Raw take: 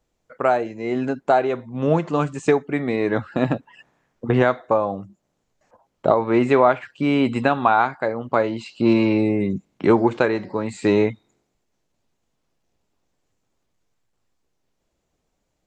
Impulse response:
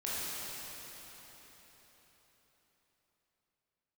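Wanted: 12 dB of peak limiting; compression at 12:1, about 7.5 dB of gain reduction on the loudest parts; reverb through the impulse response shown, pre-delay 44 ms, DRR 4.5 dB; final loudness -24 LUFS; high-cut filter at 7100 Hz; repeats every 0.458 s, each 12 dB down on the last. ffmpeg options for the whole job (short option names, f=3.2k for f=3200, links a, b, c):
-filter_complex "[0:a]lowpass=7.1k,acompressor=threshold=-18dB:ratio=12,alimiter=limit=-17.5dB:level=0:latency=1,aecho=1:1:458|916|1374:0.251|0.0628|0.0157,asplit=2[a][b];[1:a]atrim=start_sample=2205,adelay=44[c];[b][c]afir=irnorm=-1:irlink=0,volume=-10dB[d];[a][d]amix=inputs=2:normalize=0,volume=3.5dB"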